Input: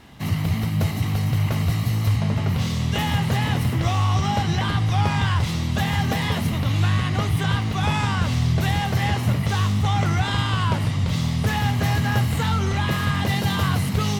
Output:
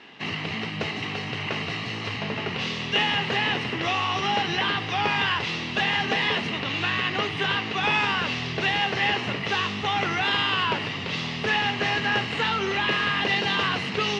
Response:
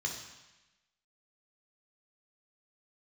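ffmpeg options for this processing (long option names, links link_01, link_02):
-af "highpass=300,equalizer=frequency=410:width_type=q:width=4:gain=6,equalizer=frequency=600:width_type=q:width=4:gain=-3,equalizer=frequency=1800:width_type=q:width=4:gain=5,equalizer=frequency=2700:width_type=q:width=4:gain=10,lowpass=frequency=5300:width=0.5412,lowpass=frequency=5300:width=1.3066"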